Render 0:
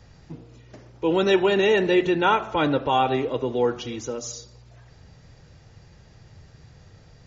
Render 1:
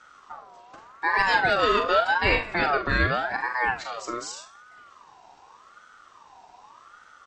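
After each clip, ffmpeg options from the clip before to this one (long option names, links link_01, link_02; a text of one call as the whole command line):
ffmpeg -i in.wav -af "aecho=1:1:42|73:0.447|0.126,aeval=exprs='val(0)*sin(2*PI*1100*n/s+1100*0.25/0.85*sin(2*PI*0.85*n/s))':channel_layout=same" out.wav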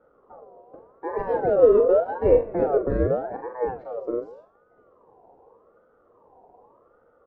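ffmpeg -i in.wav -af "lowpass=frequency=490:width_type=q:width=4.9" out.wav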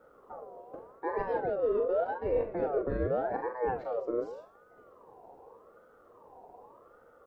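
ffmpeg -i in.wav -af "highshelf=frequency=2000:gain=11,areverse,acompressor=threshold=-28dB:ratio=5,areverse" out.wav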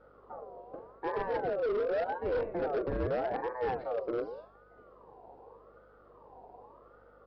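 ffmpeg -i in.wav -af "aeval=exprs='val(0)+0.000447*(sin(2*PI*50*n/s)+sin(2*PI*2*50*n/s)/2+sin(2*PI*3*50*n/s)/3+sin(2*PI*4*50*n/s)/4+sin(2*PI*5*50*n/s)/5)':channel_layout=same,aresample=11025,asoftclip=type=hard:threshold=-27.5dB,aresample=44100" out.wav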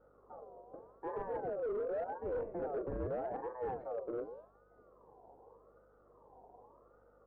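ffmpeg -i in.wav -af "lowpass=1200,volume=-6dB" out.wav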